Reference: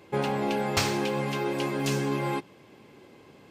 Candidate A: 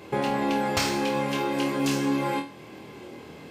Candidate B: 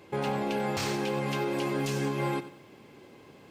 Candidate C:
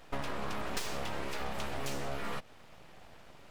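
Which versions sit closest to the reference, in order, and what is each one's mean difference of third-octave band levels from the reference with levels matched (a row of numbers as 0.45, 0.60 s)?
B, A, C; 2.0, 3.5, 7.0 dB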